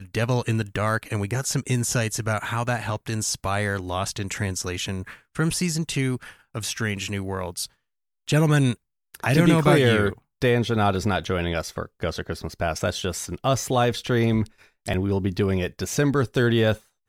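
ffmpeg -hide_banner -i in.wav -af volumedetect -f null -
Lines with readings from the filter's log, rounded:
mean_volume: -24.1 dB
max_volume: -5.4 dB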